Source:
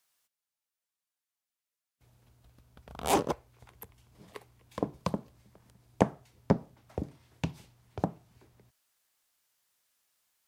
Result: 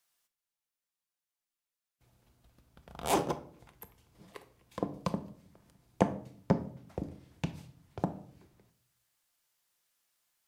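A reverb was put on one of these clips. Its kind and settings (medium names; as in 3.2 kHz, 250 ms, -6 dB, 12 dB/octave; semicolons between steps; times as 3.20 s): simulated room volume 740 m³, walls furnished, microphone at 0.82 m; trim -2.5 dB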